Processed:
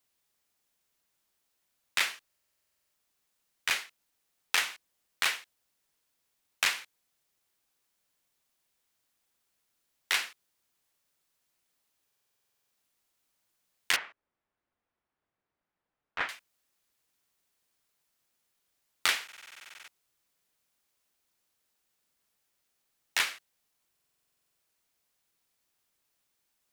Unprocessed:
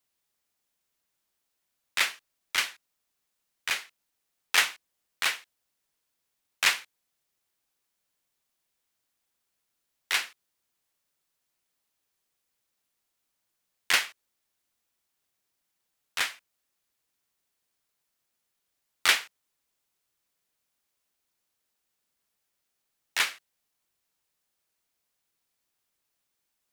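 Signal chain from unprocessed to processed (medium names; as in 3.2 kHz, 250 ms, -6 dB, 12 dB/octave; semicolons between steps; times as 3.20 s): 13.96–16.29 s: low-pass 1.6 kHz 12 dB/octave; compression 10:1, threshold -25 dBFS, peak gain reduction 9.5 dB; buffer glitch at 2.27/12.06/19.24/23.93 s, samples 2048, times 13; trim +2 dB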